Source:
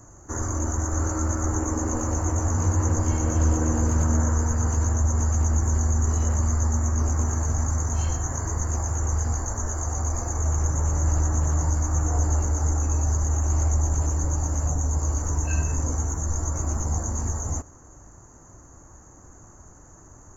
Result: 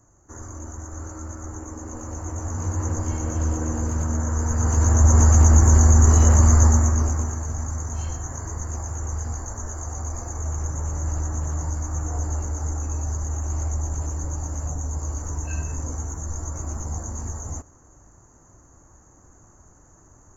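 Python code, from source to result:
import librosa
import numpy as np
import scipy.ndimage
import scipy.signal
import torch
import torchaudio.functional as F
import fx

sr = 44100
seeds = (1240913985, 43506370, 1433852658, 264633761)

y = fx.gain(x, sr, db=fx.line((1.79, -10.0), (2.84, -3.0), (4.23, -3.0), (5.14, 8.5), (6.65, 8.5), (7.39, -4.0)))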